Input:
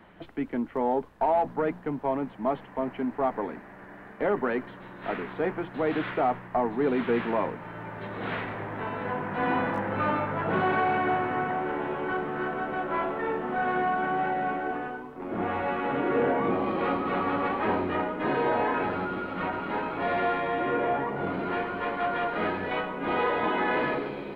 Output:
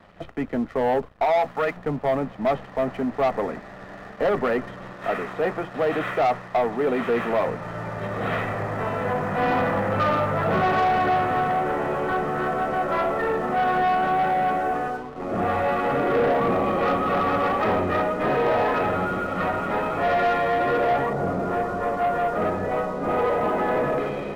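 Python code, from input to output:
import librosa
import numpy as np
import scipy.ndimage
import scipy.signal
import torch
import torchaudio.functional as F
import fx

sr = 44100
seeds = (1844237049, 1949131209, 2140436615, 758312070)

y = fx.tilt_shelf(x, sr, db=-9.0, hz=830.0, at=(1.22, 1.77))
y = fx.low_shelf(y, sr, hz=180.0, db=-8.5, at=(4.93, 7.48))
y = fx.bessel_lowpass(y, sr, hz=1100.0, order=2, at=(21.13, 23.98))
y = fx.high_shelf(y, sr, hz=3700.0, db=-12.0)
y = y + 0.44 * np.pad(y, (int(1.6 * sr / 1000.0), 0))[:len(y)]
y = fx.leveller(y, sr, passes=2)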